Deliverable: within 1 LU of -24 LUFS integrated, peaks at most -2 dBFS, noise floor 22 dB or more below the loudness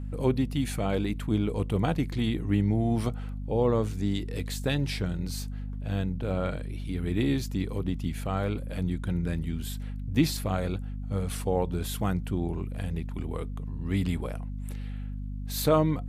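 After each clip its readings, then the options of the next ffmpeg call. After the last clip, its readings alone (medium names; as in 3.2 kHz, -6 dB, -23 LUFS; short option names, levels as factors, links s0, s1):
hum 50 Hz; highest harmonic 250 Hz; hum level -32 dBFS; loudness -30.0 LUFS; peak level -10.0 dBFS; loudness target -24.0 LUFS
-> -af "bandreject=f=50:t=h:w=4,bandreject=f=100:t=h:w=4,bandreject=f=150:t=h:w=4,bandreject=f=200:t=h:w=4,bandreject=f=250:t=h:w=4"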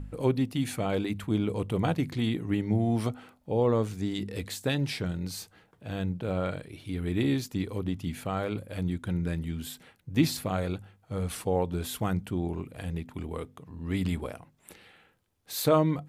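hum not found; loudness -30.5 LUFS; peak level -10.0 dBFS; loudness target -24.0 LUFS
-> -af "volume=2.11"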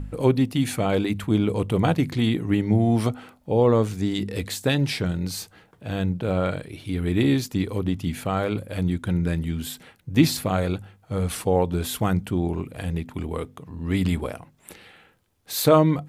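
loudness -24.0 LUFS; peak level -3.5 dBFS; noise floor -59 dBFS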